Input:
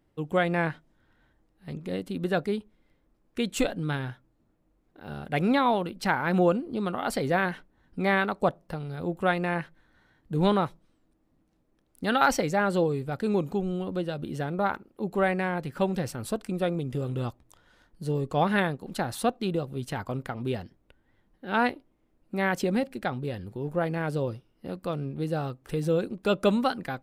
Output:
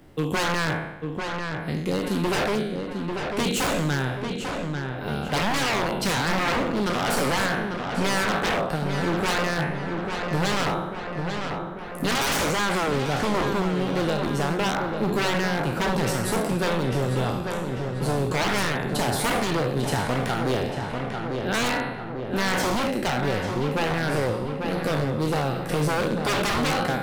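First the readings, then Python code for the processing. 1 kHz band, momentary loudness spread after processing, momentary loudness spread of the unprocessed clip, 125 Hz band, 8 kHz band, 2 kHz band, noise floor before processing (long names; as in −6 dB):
+3.5 dB, 6 LU, 11 LU, +5.0 dB, +11.5 dB, +5.5 dB, −70 dBFS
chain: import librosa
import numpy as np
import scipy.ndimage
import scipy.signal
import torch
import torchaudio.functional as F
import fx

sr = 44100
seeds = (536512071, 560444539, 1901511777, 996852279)

p1 = fx.spec_trails(x, sr, decay_s=0.73)
p2 = 10.0 ** (-24.5 / 20.0) * (np.abs((p1 / 10.0 ** (-24.5 / 20.0) + 3.0) % 4.0 - 2.0) - 1.0)
p3 = p2 + fx.echo_filtered(p2, sr, ms=844, feedback_pct=60, hz=2600.0, wet_db=-7.0, dry=0)
p4 = fx.band_squash(p3, sr, depth_pct=40)
y = p4 * 10.0 ** (5.5 / 20.0)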